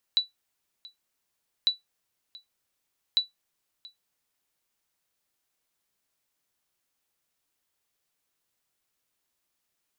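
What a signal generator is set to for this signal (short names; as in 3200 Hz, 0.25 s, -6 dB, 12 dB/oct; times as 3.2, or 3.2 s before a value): sonar ping 3950 Hz, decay 0.15 s, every 1.50 s, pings 3, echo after 0.68 s, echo -23 dB -14 dBFS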